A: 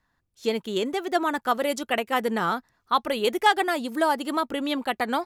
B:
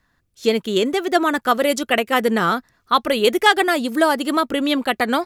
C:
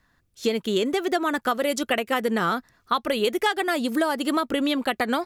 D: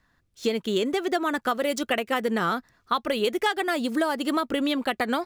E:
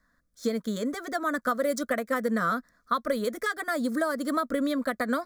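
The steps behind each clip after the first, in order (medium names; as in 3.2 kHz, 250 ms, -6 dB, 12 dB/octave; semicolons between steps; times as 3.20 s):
peaking EQ 880 Hz -6 dB 0.48 oct; trim +8 dB
compression 5:1, threshold -20 dBFS, peak gain reduction 11 dB
median filter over 3 samples; trim -1.5 dB
static phaser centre 560 Hz, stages 8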